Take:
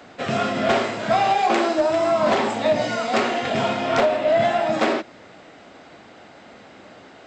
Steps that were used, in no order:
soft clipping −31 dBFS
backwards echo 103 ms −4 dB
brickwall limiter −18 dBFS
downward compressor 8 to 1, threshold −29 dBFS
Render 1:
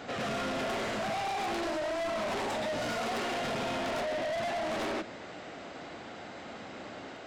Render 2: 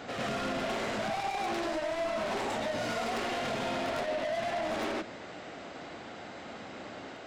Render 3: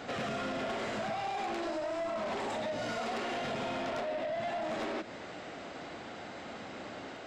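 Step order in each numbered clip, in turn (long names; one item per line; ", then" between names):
brickwall limiter, then backwards echo, then soft clipping, then downward compressor
brickwall limiter, then soft clipping, then backwards echo, then downward compressor
brickwall limiter, then backwards echo, then downward compressor, then soft clipping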